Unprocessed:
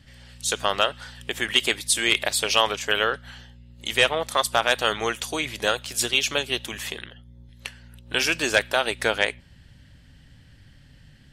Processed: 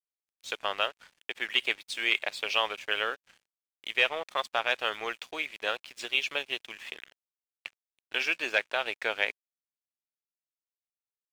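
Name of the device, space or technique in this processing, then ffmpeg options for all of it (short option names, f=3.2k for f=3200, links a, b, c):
pocket radio on a weak battery: -af "highpass=390,lowpass=3.9k,aeval=exprs='sgn(val(0))*max(abs(val(0))-0.0075,0)':c=same,equalizer=f=2.4k:t=o:w=0.45:g=6.5,volume=-7.5dB"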